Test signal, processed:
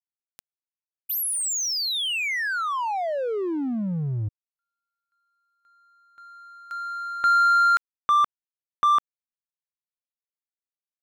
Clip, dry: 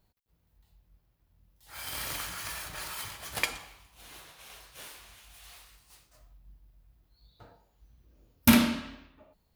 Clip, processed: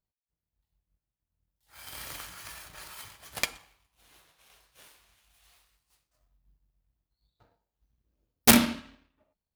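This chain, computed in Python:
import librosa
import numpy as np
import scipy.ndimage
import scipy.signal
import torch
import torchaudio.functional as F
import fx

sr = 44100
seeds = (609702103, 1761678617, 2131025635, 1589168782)

y = fx.power_curve(x, sr, exponent=1.4)
y = (np.mod(10.0 ** (13.5 / 20.0) * y + 1.0, 2.0) - 1.0) / 10.0 ** (13.5 / 20.0)
y = y * 10.0 ** (6.0 / 20.0)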